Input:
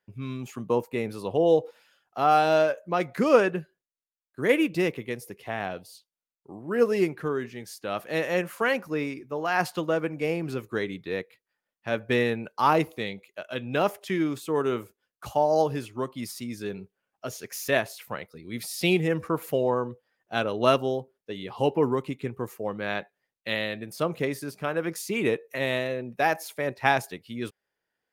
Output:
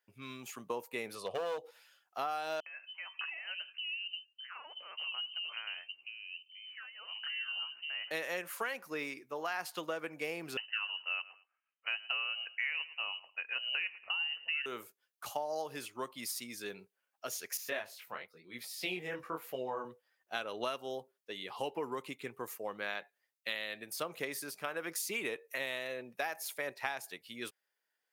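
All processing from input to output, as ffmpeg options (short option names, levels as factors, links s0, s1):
-filter_complex "[0:a]asettb=1/sr,asplit=3[s0][s1][s2];[s0]atrim=end=1.154[s3];[s1]atrim=start=1.15:end=1.58,asetpts=PTS-STARTPTS,afade=t=in:d=0.004:c=qsin,afade=t=out:st=0.426:d=0.004:c=qsin,lowpass=8800,aecho=1:1:1.7:0.62,atrim=end_sample=18963,aeval=exprs='clip(val(0),-1,0.0944)':c=same[s4];[s2]atrim=start=1.576[s5];[s3][s4]acrossfade=d=0.004:c1=hsin:c2=qsin[s6];[s6][s5]acrossfade=d=0.004:c1=qsin:c2=hsin,asettb=1/sr,asplit=3[s7][s8][s9];[s7]atrim=end=2.604[s10];[s8]atrim=start=2.6:end=8.11,asetpts=PTS-STARTPTS,afade=t=in:d=0.004:c=qsin,afade=t=out:st=5.506:d=0.004:c=qsin,acompressor=threshold=0.0224:ratio=10:attack=3.2:release=140:knee=1:detection=peak,acrossover=split=170|700[s11][s12][s13];[s13]adelay=60[s14];[s12]adelay=590[s15];[s11][s15][s14]amix=inputs=3:normalize=0,atrim=end_sample=242991,lowpass=f=2700:t=q:w=0.5098,lowpass=f=2700:t=q:w=0.6013,lowpass=f=2700:t=q:w=0.9,lowpass=f=2700:t=q:w=2.563,afreqshift=-3200[s16];[s9]atrim=start=8.106[s17];[s10][s16]acrossfade=d=0.004:c1=hsin:c2=qsin[s18];[s18][s17]acrossfade=d=0.004:c1=qsin:c2=hsin,asettb=1/sr,asplit=3[s19][s20][s21];[s19]atrim=end=10.574[s22];[s20]atrim=start=10.57:end=14.66,asetpts=PTS-STARTPTS,afade=t=in:d=0.004:c=qsin,afade=t=out:st=4.086:d=0.004:c=qsin,aecho=1:1:109|218:0.0891|0.0214,atrim=end_sample=180369,lowpass=f=2600:t=q:w=0.5098,lowpass=f=2600:t=q:w=0.6013,lowpass=f=2600:t=q:w=0.9,lowpass=f=2600:t=q:w=2.563,afreqshift=-3100[s23];[s21]atrim=start=14.656[s24];[s22][s23]acrossfade=d=0.004:c1=hsin:c2=qsin[s25];[s25][s24]acrossfade=d=0.004:c1=qsin:c2=hsin,asettb=1/sr,asplit=3[s26][s27][s28];[s26]atrim=end=17.574[s29];[s27]atrim=start=17.57:end=19.85,asetpts=PTS-STARTPTS,afade=t=in:d=0.004:c=qsin,afade=t=out:st=2.276:d=0.004:c=qsin,equalizer=f=9900:w=0.5:g=-9.5,flanger=delay=16:depth=7.2:speed=1[s30];[s28]atrim=start=19.846[s31];[s29][s30]acrossfade=d=0.004:c1=hsin:c2=qsin[s32];[s32][s31]acrossfade=d=0.004:c1=qsin:c2=hsin,highpass=f=1100:p=1,highshelf=f=9800:g=5.5,acompressor=threshold=0.0251:ratio=10,volume=0.891"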